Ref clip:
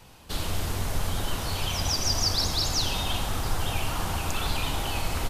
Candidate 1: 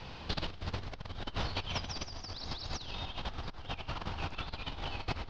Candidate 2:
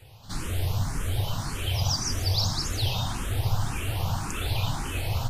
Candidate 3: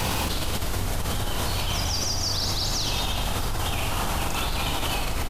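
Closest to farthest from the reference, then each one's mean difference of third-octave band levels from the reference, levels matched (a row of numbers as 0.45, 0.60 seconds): 3, 2, 1; 3.0, 5.5, 9.5 decibels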